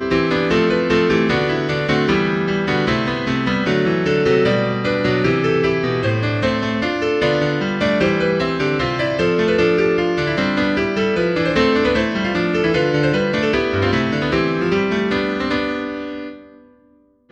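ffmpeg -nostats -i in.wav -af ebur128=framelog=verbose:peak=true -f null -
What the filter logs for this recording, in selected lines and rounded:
Integrated loudness:
  I:         -17.7 LUFS
  Threshold: -28.0 LUFS
Loudness range:
  LRA:         1.3 LU
  Threshold: -37.8 LUFS
  LRA low:   -18.5 LUFS
  LRA high:  -17.2 LUFS
True peak:
  Peak:       -3.2 dBFS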